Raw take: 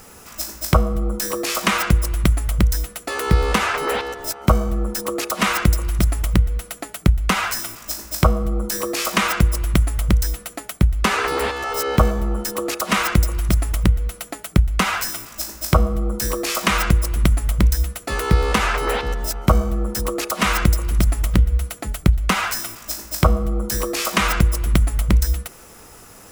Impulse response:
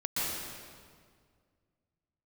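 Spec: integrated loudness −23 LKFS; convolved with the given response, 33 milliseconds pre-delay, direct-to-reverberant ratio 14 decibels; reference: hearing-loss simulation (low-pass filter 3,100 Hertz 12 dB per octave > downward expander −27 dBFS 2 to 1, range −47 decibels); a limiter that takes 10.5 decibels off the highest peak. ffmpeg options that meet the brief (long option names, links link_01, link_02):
-filter_complex "[0:a]alimiter=limit=-13dB:level=0:latency=1,asplit=2[link_01][link_02];[1:a]atrim=start_sample=2205,adelay=33[link_03];[link_02][link_03]afir=irnorm=-1:irlink=0,volume=-21.5dB[link_04];[link_01][link_04]amix=inputs=2:normalize=0,lowpass=3100,agate=range=-47dB:threshold=-27dB:ratio=2,volume=1.5dB"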